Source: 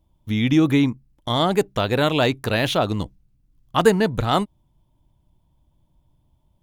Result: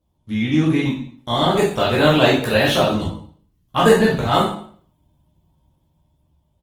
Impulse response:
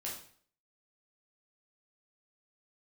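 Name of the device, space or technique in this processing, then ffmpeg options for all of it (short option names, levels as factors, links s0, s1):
speakerphone in a meeting room: -filter_complex "[0:a]highpass=48,asplit=2[s0][s1];[s1]adelay=13,volume=0.398[s2];[s0][s2]amix=inputs=2:normalize=0,aecho=1:1:81|162|243:0.0841|0.0294|0.0103[s3];[1:a]atrim=start_sample=2205[s4];[s3][s4]afir=irnorm=-1:irlink=0,dynaudnorm=f=240:g=11:m=3.35" -ar 48000 -c:a libopus -b:a 20k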